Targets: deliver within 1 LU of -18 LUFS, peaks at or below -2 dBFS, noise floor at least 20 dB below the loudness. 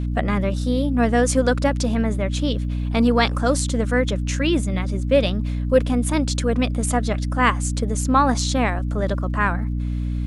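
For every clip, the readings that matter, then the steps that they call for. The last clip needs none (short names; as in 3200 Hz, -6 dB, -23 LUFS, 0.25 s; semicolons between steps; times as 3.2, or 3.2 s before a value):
ticks 51/s; hum 60 Hz; harmonics up to 300 Hz; hum level -21 dBFS; loudness -21.0 LUFS; peak -4.0 dBFS; loudness target -18.0 LUFS
-> de-click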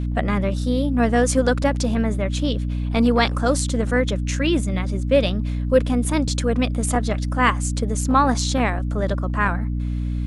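ticks 0/s; hum 60 Hz; harmonics up to 300 Hz; hum level -21 dBFS
-> de-hum 60 Hz, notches 5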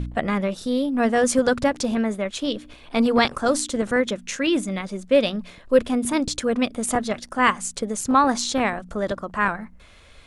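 hum none; loudness -22.5 LUFS; peak -4.5 dBFS; loudness target -18.0 LUFS
-> gain +4.5 dB; limiter -2 dBFS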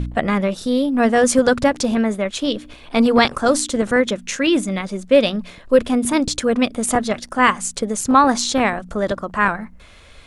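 loudness -18.0 LUFS; peak -2.0 dBFS; noise floor -44 dBFS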